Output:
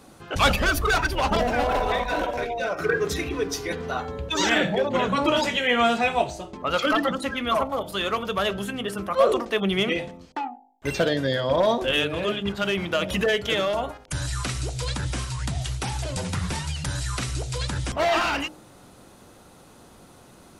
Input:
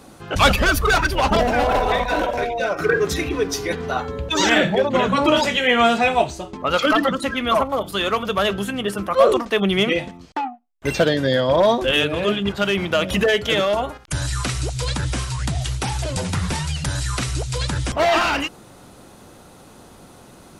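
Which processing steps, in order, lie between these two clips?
de-hum 51.31 Hz, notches 18; trim -4.5 dB

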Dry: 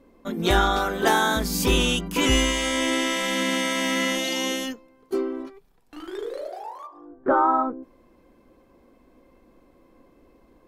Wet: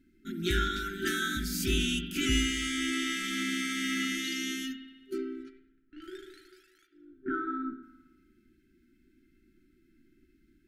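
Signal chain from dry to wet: spring tank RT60 1.2 s, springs 53 ms, chirp 50 ms, DRR 8.5 dB; 5.18–6.02 s: level-controlled noise filter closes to 1.4 kHz, open at -27.5 dBFS; FFT band-reject 390–1300 Hz; trim -7.5 dB

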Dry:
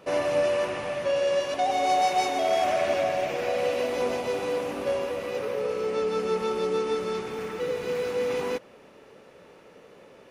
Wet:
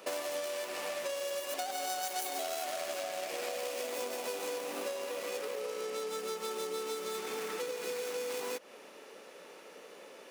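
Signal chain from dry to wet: tracing distortion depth 0.47 ms; Bessel high-pass 320 Hz, order 4; compression 12:1, threshold -35 dBFS, peak gain reduction 16 dB; treble shelf 4.2 kHz +11 dB

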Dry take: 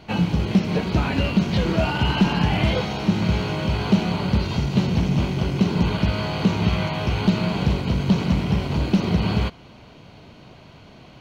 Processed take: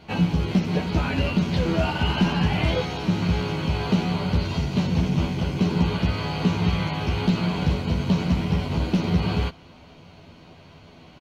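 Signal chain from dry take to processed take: doubling 12 ms -3.5 dB; trim -3.5 dB

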